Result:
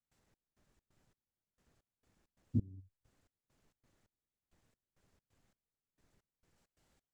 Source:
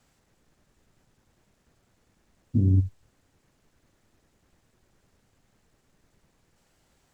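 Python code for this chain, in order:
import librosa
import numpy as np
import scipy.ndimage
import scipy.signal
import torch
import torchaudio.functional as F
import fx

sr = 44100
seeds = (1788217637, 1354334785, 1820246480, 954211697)

y = fx.step_gate(x, sr, bpm=133, pattern='.xx..xx.xx...', floor_db=-24.0, edge_ms=4.5)
y = F.gain(torch.from_numpy(y), -8.5).numpy()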